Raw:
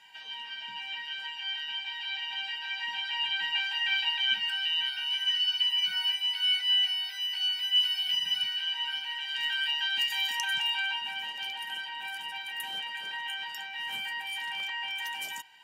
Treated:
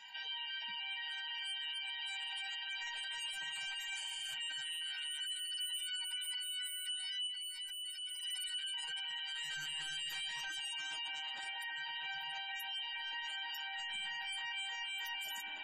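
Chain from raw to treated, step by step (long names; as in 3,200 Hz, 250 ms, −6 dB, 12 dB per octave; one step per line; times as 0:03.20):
0:09.87–0:10.70: phase distortion by the signal itself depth 0.064 ms
gain into a clipping stage and back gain 34 dB
0:11.34–0:11.76: parametric band 2,900 Hz −11 dB 0.2 octaves
delay with a high-pass on its return 203 ms, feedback 52%, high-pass 3,700 Hz, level −22 dB
spring reverb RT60 3.7 s, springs 33/49 ms, chirp 70 ms, DRR 2 dB
gate on every frequency bin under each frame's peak −25 dB strong
high-shelf EQ 5,400 Hz +9.5 dB
0:03.99–0:04.26: healed spectral selection 1,800–9,900 Hz after
brickwall limiter −35 dBFS, peak gain reduction 14 dB
0:07.27–0:08.23: tuned comb filter 320 Hz, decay 0.42 s, harmonics all, mix 40%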